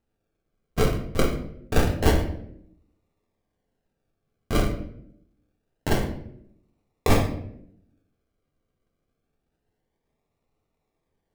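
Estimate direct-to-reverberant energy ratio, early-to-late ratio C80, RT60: 1.0 dB, 11.5 dB, 0.70 s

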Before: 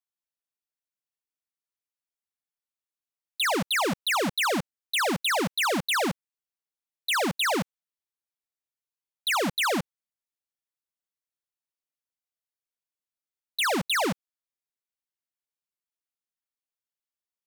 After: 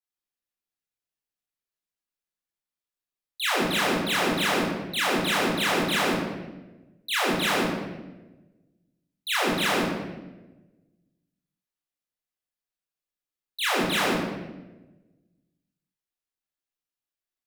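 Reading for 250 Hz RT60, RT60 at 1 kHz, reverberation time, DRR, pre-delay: 1.5 s, 0.95 s, 1.2 s, -8.5 dB, 21 ms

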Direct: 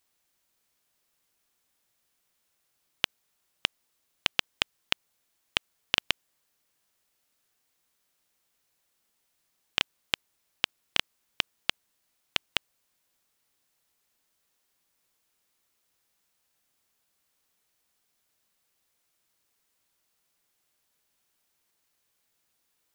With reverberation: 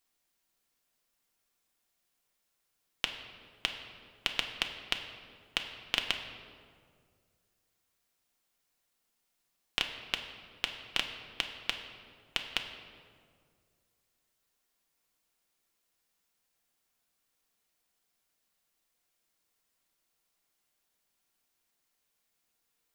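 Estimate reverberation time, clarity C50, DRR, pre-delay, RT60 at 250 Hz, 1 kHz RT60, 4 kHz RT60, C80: 2.0 s, 7.5 dB, 3.5 dB, 3 ms, 2.3 s, 1.8 s, 1.2 s, 8.5 dB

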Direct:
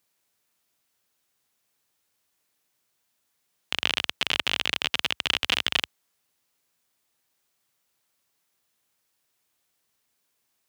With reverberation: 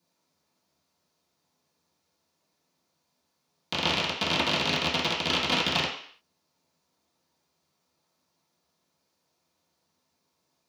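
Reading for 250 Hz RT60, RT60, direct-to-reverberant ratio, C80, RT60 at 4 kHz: 0.50 s, 0.55 s, -11.0 dB, 9.0 dB, 0.60 s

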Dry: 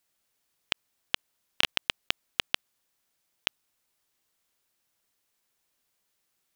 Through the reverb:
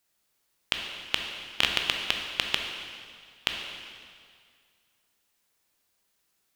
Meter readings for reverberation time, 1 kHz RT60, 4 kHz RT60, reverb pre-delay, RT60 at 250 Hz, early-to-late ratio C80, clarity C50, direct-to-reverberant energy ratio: 2.1 s, 2.1 s, 2.0 s, 8 ms, 2.0 s, 5.0 dB, 3.5 dB, 2.0 dB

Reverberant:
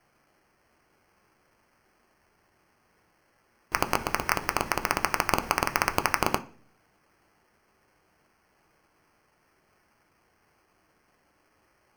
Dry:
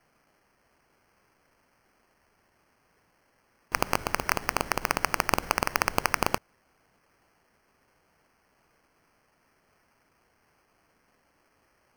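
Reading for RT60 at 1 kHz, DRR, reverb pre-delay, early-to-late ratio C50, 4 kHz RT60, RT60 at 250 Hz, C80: 0.40 s, 8.0 dB, 3 ms, 18.5 dB, 0.45 s, 0.65 s, 23.0 dB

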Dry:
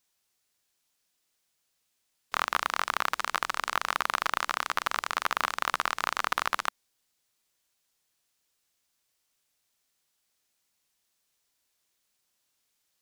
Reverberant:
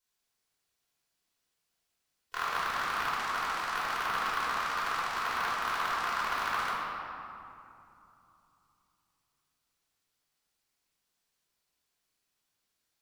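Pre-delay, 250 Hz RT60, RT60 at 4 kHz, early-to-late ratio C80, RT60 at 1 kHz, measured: 3 ms, 3.5 s, 1.5 s, -0.5 dB, 3.0 s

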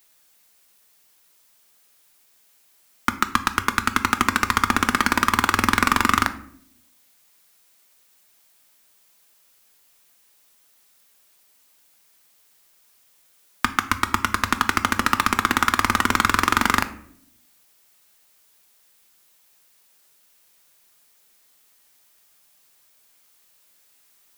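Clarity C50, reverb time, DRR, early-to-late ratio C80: 14.5 dB, 0.65 s, 9.0 dB, 18.0 dB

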